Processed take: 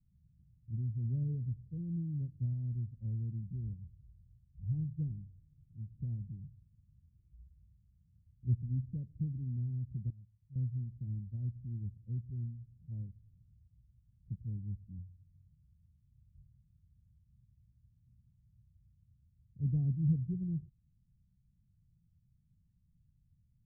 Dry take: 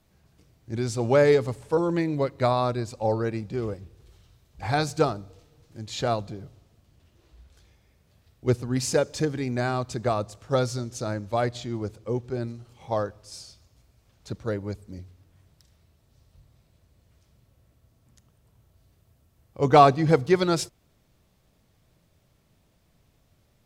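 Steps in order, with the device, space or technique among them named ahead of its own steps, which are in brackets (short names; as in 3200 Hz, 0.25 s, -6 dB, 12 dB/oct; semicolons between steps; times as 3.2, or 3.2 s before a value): the neighbour's flat through the wall (LPF 160 Hz 24 dB/oct; bell 190 Hz +3.5 dB); 10.1–10.56 passive tone stack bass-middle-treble 5-5-5; gain -4.5 dB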